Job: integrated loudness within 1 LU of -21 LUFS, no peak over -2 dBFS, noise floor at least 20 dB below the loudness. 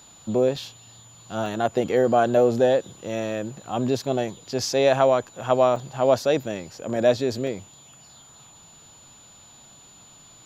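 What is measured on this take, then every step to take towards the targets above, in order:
dropouts 5; longest dropout 2.5 ms; steady tone 7000 Hz; tone level -49 dBFS; loudness -23.0 LUFS; peak -6.0 dBFS; loudness target -21.0 LUFS
-> interpolate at 0.56/1.46/5.76/6.96/7.47, 2.5 ms; notch 7000 Hz, Q 30; gain +2 dB

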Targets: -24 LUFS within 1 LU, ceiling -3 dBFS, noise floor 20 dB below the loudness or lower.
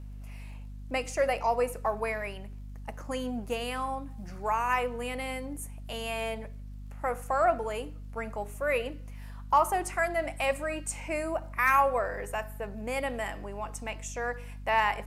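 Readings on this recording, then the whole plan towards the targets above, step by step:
ticks 28/s; hum 50 Hz; harmonics up to 250 Hz; hum level -39 dBFS; loudness -31.0 LUFS; peak -12.5 dBFS; loudness target -24.0 LUFS
-> de-click; de-hum 50 Hz, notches 5; gain +7 dB

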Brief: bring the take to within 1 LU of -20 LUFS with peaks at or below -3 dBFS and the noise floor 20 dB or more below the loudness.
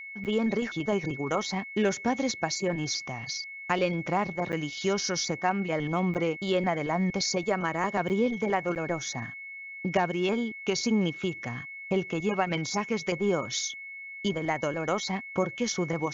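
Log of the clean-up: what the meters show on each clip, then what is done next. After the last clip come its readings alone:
dropouts 5; longest dropout 8.9 ms; steady tone 2200 Hz; tone level -39 dBFS; loudness -29.0 LUFS; peak -11.5 dBFS; loudness target -20.0 LUFS
-> interpolate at 0.24/4.52/6.14/8.09/8.75, 8.9 ms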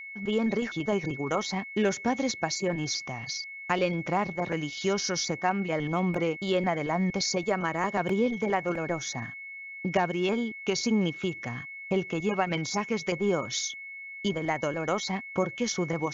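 dropouts 0; steady tone 2200 Hz; tone level -39 dBFS
-> notch 2200 Hz, Q 30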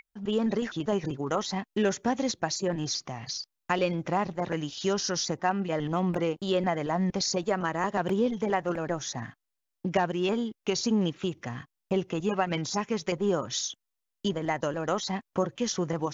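steady tone none; loudness -29.5 LUFS; peak -11.5 dBFS; loudness target -20.0 LUFS
-> gain +9.5 dB; limiter -3 dBFS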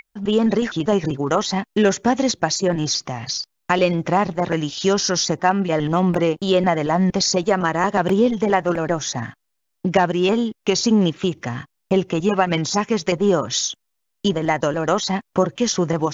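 loudness -20.0 LUFS; peak -3.0 dBFS; noise floor -74 dBFS

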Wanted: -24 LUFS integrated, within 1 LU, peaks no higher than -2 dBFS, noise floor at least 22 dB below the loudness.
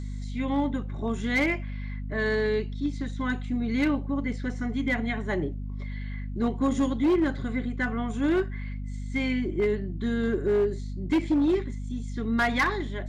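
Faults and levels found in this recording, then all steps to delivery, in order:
clipped 1.1%; flat tops at -18.5 dBFS; hum 50 Hz; harmonics up to 250 Hz; hum level -31 dBFS; loudness -28.0 LUFS; peak -18.5 dBFS; loudness target -24.0 LUFS
-> clip repair -18.5 dBFS; notches 50/100/150/200/250 Hz; gain +4 dB

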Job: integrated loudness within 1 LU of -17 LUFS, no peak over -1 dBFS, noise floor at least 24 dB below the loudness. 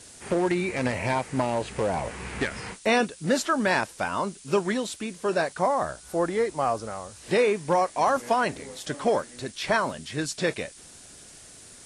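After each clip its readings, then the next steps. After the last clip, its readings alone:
noise floor -49 dBFS; noise floor target -51 dBFS; loudness -26.5 LUFS; peak -11.0 dBFS; loudness target -17.0 LUFS
-> denoiser 6 dB, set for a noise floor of -49 dBFS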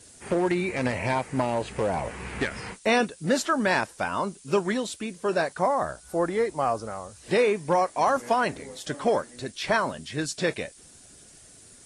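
noise floor -52 dBFS; loudness -26.5 LUFS; peak -11.0 dBFS; loudness target -17.0 LUFS
-> gain +9.5 dB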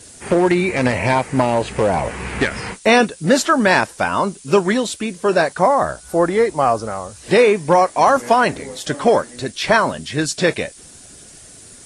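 loudness -17.0 LUFS; peak -1.5 dBFS; noise floor -42 dBFS

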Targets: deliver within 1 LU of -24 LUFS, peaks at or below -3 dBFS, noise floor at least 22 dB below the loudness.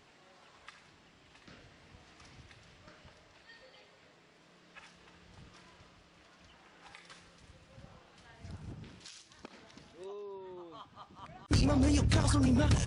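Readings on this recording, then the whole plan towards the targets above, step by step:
loudness -30.5 LUFS; peak -20.0 dBFS; loudness target -24.0 LUFS
-> gain +6.5 dB

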